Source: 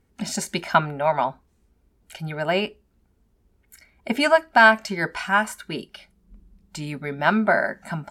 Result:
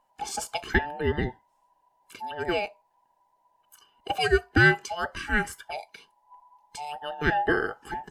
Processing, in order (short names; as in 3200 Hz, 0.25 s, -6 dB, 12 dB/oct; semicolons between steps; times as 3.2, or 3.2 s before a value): band inversion scrambler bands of 1000 Hz; gain -5 dB